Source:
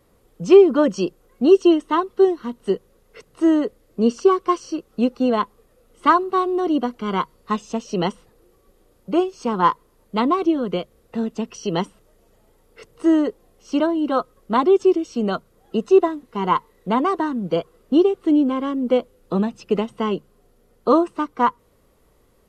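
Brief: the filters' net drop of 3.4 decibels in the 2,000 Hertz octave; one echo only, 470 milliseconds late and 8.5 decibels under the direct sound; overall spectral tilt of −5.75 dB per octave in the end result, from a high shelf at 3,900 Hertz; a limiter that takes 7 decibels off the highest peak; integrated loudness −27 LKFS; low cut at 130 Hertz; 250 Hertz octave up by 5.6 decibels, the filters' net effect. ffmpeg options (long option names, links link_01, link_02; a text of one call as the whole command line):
ffmpeg -i in.wav -af "highpass=130,equalizer=frequency=250:width_type=o:gain=8,equalizer=frequency=2000:width_type=o:gain=-7,highshelf=frequency=3900:gain=8,alimiter=limit=-7dB:level=0:latency=1,aecho=1:1:470:0.376,volume=-9dB" out.wav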